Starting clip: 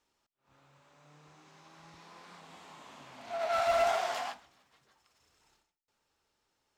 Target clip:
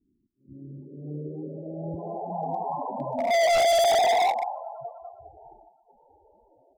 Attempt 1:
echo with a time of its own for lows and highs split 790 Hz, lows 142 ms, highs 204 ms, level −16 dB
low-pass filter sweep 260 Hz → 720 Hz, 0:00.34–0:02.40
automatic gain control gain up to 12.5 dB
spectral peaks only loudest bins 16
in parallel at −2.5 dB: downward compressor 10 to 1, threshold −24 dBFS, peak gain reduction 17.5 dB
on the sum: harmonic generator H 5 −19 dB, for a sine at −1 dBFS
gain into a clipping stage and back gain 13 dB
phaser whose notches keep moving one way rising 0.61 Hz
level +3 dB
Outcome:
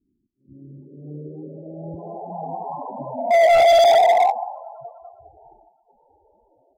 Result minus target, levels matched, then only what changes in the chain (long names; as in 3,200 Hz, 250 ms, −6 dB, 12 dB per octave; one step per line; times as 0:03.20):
gain into a clipping stage and back: distortion −6 dB
change: gain into a clipping stage and back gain 21 dB